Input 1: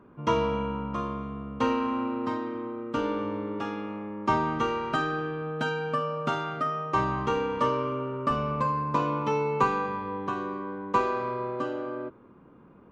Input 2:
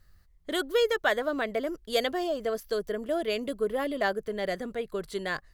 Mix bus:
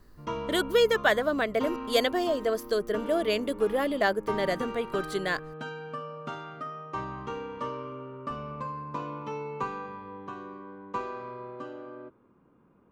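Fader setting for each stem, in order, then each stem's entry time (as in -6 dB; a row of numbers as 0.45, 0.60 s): -9.0, +2.5 dB; 0.00, 0.00 s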